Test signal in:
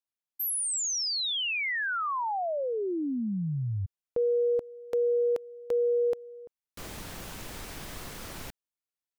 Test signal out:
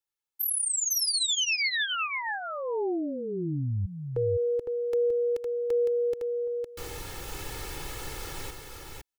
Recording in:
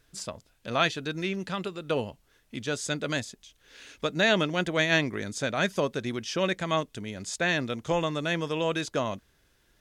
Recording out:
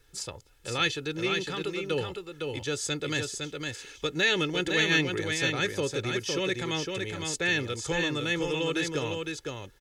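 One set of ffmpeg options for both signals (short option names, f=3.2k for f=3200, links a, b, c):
-filter_complex "[0:a]aecho=1:1:2.3:0.73,acrossover=split=430|1600[a][b][c];[b]acompressor=threshold=-41dB:ratio=4:attack=1.7:release=62:knee=2.83:detection=peak[d];[a][d][c]amix=inputs=3:normalize=0,aecho=1:1:509:0.596"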